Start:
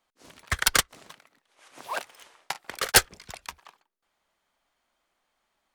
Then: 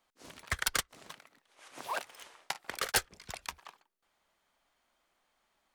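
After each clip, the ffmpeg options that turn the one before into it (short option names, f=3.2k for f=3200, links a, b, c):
-af "acompressor=threshold=-35dB:ratio=2"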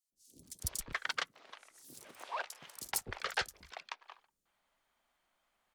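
-filter_complex "[0:a]acrossover=split=370|5300[a][b][c];[a]adelay=120[d];[b]adelay=430[e];[d][e][c]amix=inputs=3:normalize=0,volume=-2.5dB"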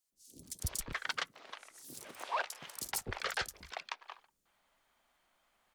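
-af "alimiter=level_in=4dB:limit=-24dB:level=0:latency=1:release=33,volume=-4dB,volume=4.5dB"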